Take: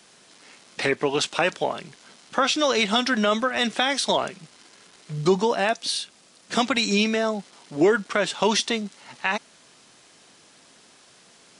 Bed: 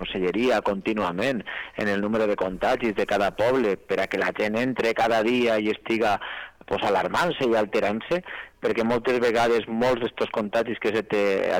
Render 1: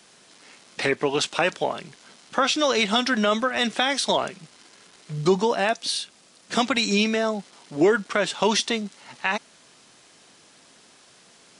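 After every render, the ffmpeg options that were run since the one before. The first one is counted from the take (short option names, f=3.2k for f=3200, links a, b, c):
-af anull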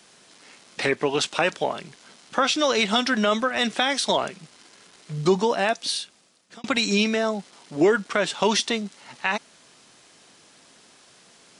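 -filter_complex "[0:a]asplit=2[a][b];[a]atrim=end=6.64,asetpts=PTS-STARTPTS,afade=t=out:st=5.91:d=0.73[c];[b]atrim=start=6.64,asetpts=PTS-STARTPTS,afade=t=in:d=0.004:c=hsin[d];[c][d]concat=n=2:v=0:a=1"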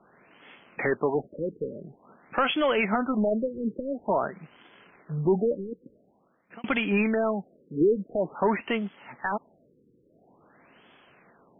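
-af "asoftclip=type=tanh:threshold=-15dB,afftfilt=real='re*lt(b*sr/1024,510*pow(3500/510,0.5+0.5*sin(2*PI*0.48*pts/sr)))':imag='im*lt(b*sr/1024,510*pow(3500/510,0.5+0.5*sin(2*PI*0.48*pts/sr)))':win_size=1024:overlap=0.75"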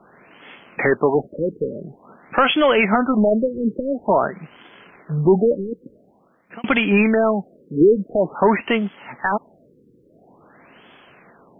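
-af "volume=8.5dB"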